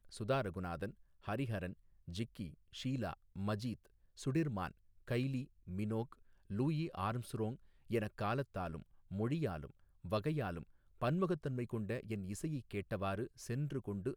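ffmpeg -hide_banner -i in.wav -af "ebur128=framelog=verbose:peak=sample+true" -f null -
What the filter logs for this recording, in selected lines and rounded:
Integrated loudness:
  I:         -40.7 LUFS
  Threshold: -51.1 LUFS
Loudness range:
  LRA:         2.4 LU
  Threshold: -61.0 LUFS
  LRA low:   -42.5 LUFS
  LRA high:  -40.1 LUFS
Sample peak:
  Peak:      -23.1 dBFS
True peak:
  Peak:      -23.1 dBFS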